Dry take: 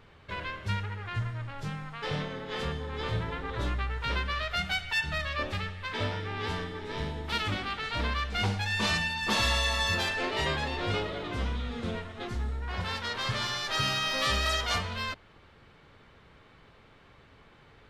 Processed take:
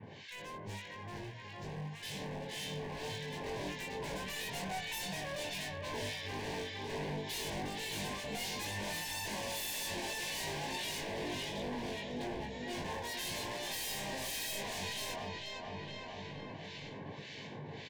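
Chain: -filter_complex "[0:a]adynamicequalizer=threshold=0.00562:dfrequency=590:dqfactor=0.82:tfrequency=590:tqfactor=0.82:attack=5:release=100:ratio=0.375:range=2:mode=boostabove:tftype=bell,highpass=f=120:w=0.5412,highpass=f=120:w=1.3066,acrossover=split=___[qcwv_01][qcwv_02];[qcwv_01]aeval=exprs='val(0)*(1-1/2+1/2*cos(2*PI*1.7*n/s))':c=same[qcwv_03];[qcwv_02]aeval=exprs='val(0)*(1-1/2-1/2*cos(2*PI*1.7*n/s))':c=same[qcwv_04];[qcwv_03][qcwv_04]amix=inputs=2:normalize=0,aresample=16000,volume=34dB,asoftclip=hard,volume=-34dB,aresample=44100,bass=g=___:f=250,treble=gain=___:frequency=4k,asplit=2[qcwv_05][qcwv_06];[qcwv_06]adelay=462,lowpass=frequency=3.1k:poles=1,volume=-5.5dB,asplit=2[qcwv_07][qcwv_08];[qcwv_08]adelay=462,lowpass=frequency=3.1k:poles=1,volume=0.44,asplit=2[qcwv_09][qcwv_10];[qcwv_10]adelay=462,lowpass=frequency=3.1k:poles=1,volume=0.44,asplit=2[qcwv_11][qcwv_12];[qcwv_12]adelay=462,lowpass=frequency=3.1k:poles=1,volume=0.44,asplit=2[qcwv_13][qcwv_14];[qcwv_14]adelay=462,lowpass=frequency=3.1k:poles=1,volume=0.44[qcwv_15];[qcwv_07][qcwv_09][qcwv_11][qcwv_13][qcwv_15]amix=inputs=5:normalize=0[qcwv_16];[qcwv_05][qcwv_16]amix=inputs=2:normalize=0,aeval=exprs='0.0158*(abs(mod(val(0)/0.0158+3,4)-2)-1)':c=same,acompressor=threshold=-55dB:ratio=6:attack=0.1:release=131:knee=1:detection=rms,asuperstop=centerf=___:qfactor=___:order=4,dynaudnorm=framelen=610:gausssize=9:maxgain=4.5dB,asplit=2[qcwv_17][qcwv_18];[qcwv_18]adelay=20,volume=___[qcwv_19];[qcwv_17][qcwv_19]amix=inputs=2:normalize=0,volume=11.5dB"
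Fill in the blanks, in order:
1600, 4, 6, 1300, 2.3, -4dB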